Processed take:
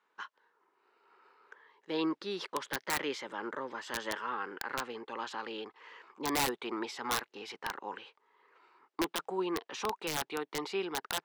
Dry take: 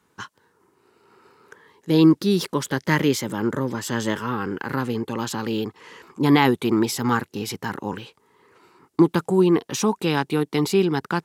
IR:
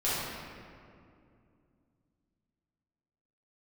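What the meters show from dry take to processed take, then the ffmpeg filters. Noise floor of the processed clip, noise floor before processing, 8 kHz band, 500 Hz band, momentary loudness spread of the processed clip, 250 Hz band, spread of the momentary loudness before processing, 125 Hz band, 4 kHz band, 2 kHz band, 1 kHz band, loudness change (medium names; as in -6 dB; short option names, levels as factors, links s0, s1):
-80 dBFS, -67 dBFS, -9.0 dB, -14.5 dB, 14 LU, -19.5 dB, 13 LU, -27.0 dB, -8.5 dB, -9.5 dB, -9.5 dB, -14.5 dB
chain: -af "highpass=620,lowpass=3200,aeval=exprs='(mod(6.68*val(0)+1,2)-1)/6.68':c=same,volume=0.473"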